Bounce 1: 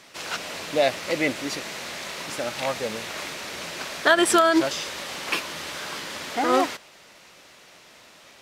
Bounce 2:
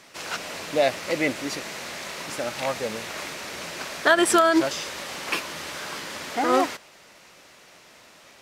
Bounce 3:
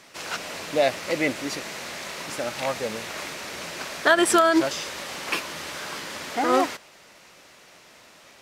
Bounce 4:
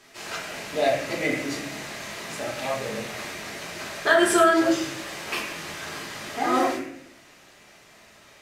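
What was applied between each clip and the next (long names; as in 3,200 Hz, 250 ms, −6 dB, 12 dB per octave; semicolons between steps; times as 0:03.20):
parametric band 3,500 Hz −2.5 dB
no processing that can be heard
convolution reverb RT60 0.70 s, pre-delay 3 ms, DRR −4 dB; level −6.5 dB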